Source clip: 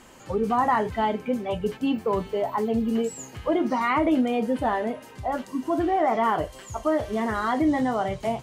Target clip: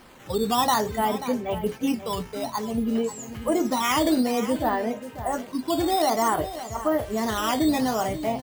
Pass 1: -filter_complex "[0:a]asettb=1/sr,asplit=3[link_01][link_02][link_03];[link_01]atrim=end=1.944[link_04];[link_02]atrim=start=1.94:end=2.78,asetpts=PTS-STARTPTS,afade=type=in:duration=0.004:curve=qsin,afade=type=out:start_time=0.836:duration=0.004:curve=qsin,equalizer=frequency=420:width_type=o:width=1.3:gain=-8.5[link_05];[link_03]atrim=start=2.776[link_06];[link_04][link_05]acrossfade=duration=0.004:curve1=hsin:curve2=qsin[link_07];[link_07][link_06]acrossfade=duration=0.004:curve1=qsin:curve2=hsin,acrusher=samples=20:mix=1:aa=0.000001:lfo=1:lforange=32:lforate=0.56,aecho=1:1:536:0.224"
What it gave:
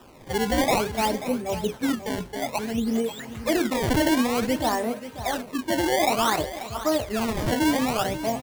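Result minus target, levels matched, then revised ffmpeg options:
sample-and-hold swept by an LFO: distortion +11 dB
-filter_complex "[0:a]asettb=1/sr,asplit=3[link_01][link_02][link_03];[link_01]atrim=end=1.944[link_04];[link_02]atrim=start=1.94:end=2.78,asetpts=PTS-STARTPTS,afade=type=in:duration=0.004:curve=qsin,afade=type=out:start_time=0.836:duration=0.004:curve=qsin,equalizer=frequency=420:width_type=o:width=1.3:gain=-8.5[link_05];[link_03]atrim=start=2.776[link_06];[link_04][link_05]acrossfade=duration=0.004:curve1=hsin:curve2=qsin[link_07];[link_07][link_06]acrossfade=duration=0.004:curve1=qsin:curve2=hsin,acrusher=samples=6:mix=1:aa=0.000001:lfo=1:lforange=9.6:lforate=0.56,aecho=1:1:536:0.224"

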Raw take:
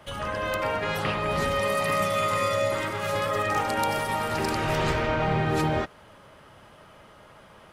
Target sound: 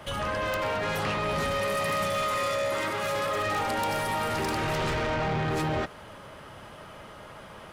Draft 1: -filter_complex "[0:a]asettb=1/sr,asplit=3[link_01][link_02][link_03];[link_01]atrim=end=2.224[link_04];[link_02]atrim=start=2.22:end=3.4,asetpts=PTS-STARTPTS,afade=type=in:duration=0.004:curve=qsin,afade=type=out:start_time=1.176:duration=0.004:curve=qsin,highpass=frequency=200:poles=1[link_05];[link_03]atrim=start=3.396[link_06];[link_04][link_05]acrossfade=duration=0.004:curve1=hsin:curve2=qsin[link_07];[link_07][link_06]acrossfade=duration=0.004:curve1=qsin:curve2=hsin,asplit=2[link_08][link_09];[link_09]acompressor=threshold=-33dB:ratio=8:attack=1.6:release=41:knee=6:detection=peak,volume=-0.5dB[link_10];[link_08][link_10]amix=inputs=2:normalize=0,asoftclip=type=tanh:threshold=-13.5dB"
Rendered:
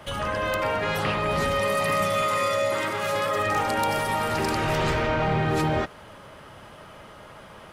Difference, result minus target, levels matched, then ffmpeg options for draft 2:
soft clipping: distortion −14 dB
-filter_complex "[0:a]asettb=1/sr,asplit=3[link_01][link_02][link_03];[link_01]atrim=end=2.224[link_04];[link_02]atrim=start=2.22:end=3.4,asetpts=PTS-STARTPTS,afade=type=in:duration=0.004:curve=qsin,afade=type=out:start_time=1.176:duration=0.004:curve=qsin,highpass=frequency=200:poles=1[link_05];[link_03]atrim=start=3.396[link_06];[link_04][link_05]acrossfade=duration=0.004:curve1=hsin:curve2=qsin[link_07];[link_07][link_06]acrossfade=duration=0.004:curve1=qsin:curve2=hsin,asplit=2[link_08][link_09];[link_09]acompressor=threshold=-33dB:ratio=8:attack=1.6:release=41:knee=6:detection=peak,volume=-0.5dB[link_10];[link_08][link_10]amix=inputs=2:normalize=0,asoftclip=type=tanh:threshold=-24.5dB"

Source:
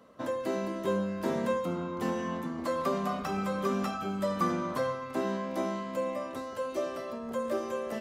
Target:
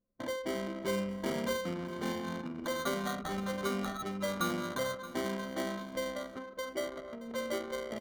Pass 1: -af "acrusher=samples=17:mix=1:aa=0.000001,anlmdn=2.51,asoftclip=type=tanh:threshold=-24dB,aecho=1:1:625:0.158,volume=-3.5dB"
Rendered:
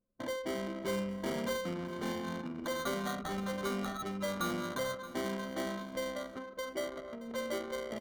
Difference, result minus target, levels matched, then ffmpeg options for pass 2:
soft clipping: distortion +14 dB
-af "acrusher=samples=17:mix=1:aa=0.000001,anlmdn=2.51,asoftclip=type=tanh:threshold=-15.5dB,aecho=1:1:625:0.158,volume=-3.5dB"

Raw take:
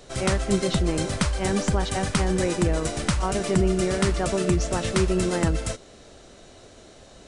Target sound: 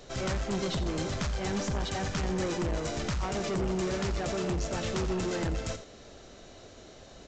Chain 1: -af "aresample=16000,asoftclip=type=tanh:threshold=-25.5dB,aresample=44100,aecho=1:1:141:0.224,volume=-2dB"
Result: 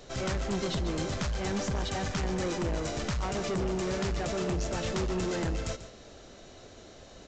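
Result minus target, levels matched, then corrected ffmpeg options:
echo 55 ms late
-af "aresample=16000,asoftclip=type=tanh:threshold=-25.5dB,aresample=44100,aecho=1:1:86:0.224,volume=-2dB"

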